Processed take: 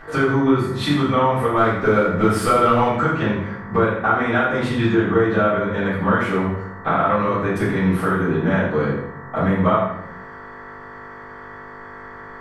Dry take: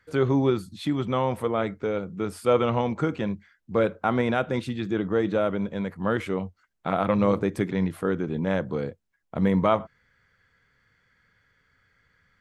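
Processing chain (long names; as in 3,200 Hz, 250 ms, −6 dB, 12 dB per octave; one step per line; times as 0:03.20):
parametric band 1,400 Hz +9 dB 1 octave
downward compressor 6 to 1, threshold −29 dBFS, peak gain reduction 16.5 dB
0:01.56–0:02.88: leveller curve on the samples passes 1
hum with harmonics 50 Hz, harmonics 39, −52 dBFS 0 dB per octave
feedback echo with a high-pass in the loop 81 ms, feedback 35%, level −10 dB
rectangular room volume 120 cubic metres, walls mixed, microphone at 3.7 metres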